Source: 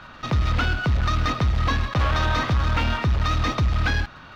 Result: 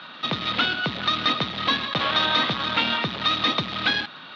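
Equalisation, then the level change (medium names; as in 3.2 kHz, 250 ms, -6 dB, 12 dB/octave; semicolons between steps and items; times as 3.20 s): high-pass 170 Hz 24 dB/octave; resonant low-pass 3.7 kHz, resonance Q 4.2; 0.0 dB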